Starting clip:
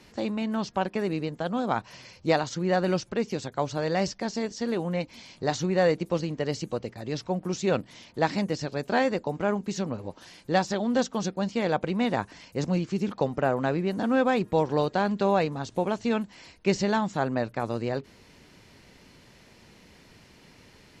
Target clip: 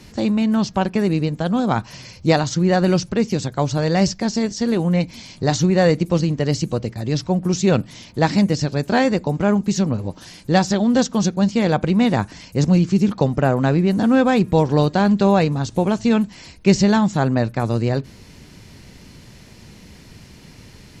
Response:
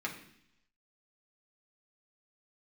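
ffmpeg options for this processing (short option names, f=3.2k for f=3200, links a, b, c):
-filter_complex "[0:a]bass=f=250:g=10,treble=f=4k:g=6,asplit=2[a][b];[1:a]atrim=start_sample=2205,atrim=end_sample=4410[c];[b][c]afir=irnorm=-1:irlink=0,volume=-21.5dB[d];[a][d]amix=inputs=2:normalize=0,volume=5dB"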